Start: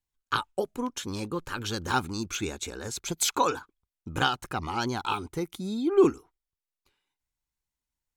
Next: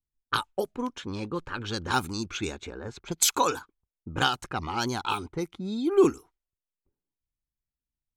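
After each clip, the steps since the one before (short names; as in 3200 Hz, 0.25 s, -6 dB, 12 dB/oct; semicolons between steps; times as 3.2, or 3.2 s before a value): low-pass opened by the level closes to 330 Hz, open at -25 dBFS; high shelf 5700 Hz +8.5 dB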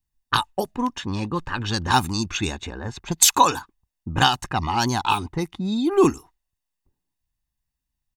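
comb 1.1 ms, depth 50%; gain +6.5 dB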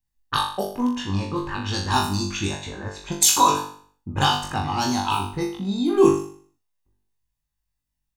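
dynamic EQ 1900 Hz, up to -5 dB, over -33 dBFS, Q 1.3; on a send: flutter echo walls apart 3.5 m, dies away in 0.5 s; on the sum: gain -3.5 dB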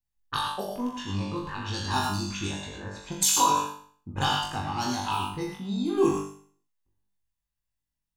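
non-linear reverb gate 0.13 s rising, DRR 3 dB; gain -7 dB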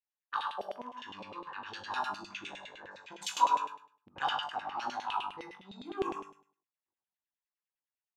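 notches 50/100/150 Hz; LFO band-pass saw down 9.8 Hz 560–3000 Hz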